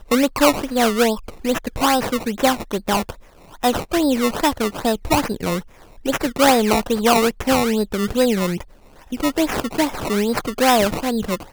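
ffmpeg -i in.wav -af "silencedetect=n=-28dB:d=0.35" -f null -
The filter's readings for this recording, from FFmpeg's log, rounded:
silence_start: 3.11
silence_end: 3.63 | silence_duration: 0.52
silence_start: 5.61
silence_end: 6.05 | silence_duration: 0.45
silence_start: 8.61
silence_end: 9.12 | silence_duration: 0.51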